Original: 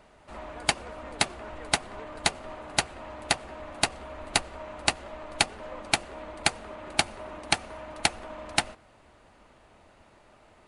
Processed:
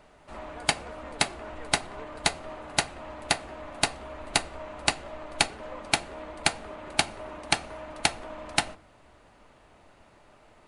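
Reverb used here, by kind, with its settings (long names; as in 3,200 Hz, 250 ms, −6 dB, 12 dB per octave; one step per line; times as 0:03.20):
rectangular room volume 180 cubic metres, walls furnished, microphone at 0.34 metres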